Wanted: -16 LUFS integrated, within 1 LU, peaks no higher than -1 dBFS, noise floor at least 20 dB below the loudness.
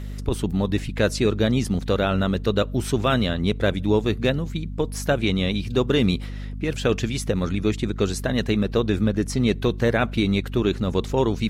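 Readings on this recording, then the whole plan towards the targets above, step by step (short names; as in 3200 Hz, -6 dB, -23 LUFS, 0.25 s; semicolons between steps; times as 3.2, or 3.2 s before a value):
hum 50 Hz; harmonics up to 250 Hz; hum level -29 dBFS; loudness -23.0 LUFS; peak -8.5 dBFS; loudness target -16.0 LUFS
-> de-hum 50 Hz, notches 5; gain +7 dB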